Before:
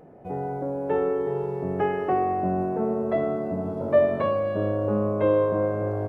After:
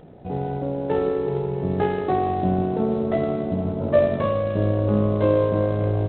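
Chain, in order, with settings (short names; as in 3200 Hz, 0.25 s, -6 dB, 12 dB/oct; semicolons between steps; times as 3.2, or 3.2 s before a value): low shelf 190 Hz +11.5 dB; AM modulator 60 Hz, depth 30%; gain +2 dB; G.726 24 kbps 8000 Hz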